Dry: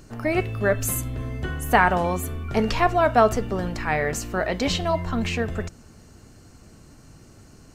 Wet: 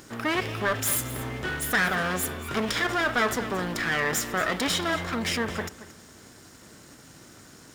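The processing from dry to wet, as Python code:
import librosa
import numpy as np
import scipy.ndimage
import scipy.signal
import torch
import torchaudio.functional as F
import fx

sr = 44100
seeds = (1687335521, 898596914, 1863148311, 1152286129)

p1 = fx.lower_of_two(x, sr, delay_ms=0.56)
p2 = fx.over_compress(p1, sr, threshold_db=-29.0, ratio=-1.0)
p3 = p1 + F.gain(torch.from_numpy(p2), -2.0).numpy()
p4 = fx.highpass(p3, sr, hz=470.0, slope=6)
p5 = fx.quant_companded(p4, sr, bits=8)
p6 = p5 + fx.echo_single(p5, sr, ms=227, db=-16.0, dry=0)
y = 10.0 ** (-15.5 / 20.0) * np.tanh(p6 / 10.0 ** (-15.5 / 20.0))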